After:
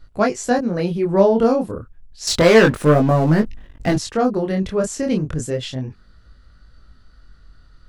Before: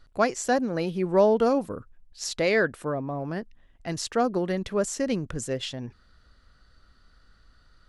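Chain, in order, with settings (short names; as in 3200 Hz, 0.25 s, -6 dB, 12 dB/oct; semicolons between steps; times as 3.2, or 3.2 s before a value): low shelf 300 Hz +8 dB; 2.27–3.96 sample leveller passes 3; chorus 0.3 Hz, delay 19 ms, depth 7.9 ms; gain +6 dB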